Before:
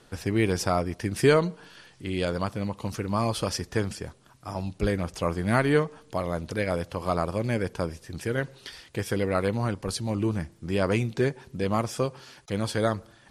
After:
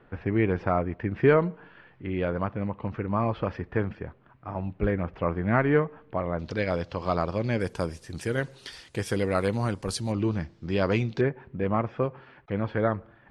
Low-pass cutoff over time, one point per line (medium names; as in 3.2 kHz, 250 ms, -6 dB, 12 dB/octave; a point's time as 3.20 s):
low-pass 24 dB/octave
2.3 kHz
from 6.39 s 5.3 kHz
from 7.60 s 11 kHz
from 10.12 s 5.2 kHz
from 11.21 s 2.3 kHz